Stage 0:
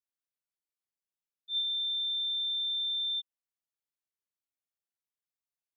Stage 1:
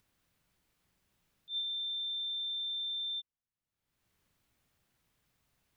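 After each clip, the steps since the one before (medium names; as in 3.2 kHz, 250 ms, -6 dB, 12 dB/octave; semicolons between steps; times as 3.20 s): upward compressor, threshold -53 dBFS; tone controls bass +13 dB, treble -7 dB; trim -2 dB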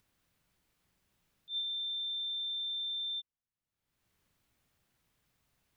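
no audible change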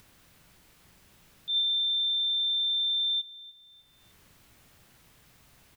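in parallel at -3 dB: compressor with a negative ratio -46 dBFS, ratio -1; on the sum: feedback delay 303 ms, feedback 31%, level -18 dB; trim +8 dB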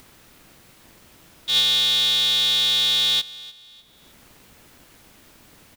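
polarity switched at an audio rate 160 Hz; trim +8 dB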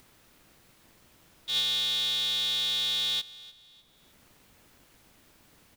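added noise pink -63 dBFS; trim -9 dB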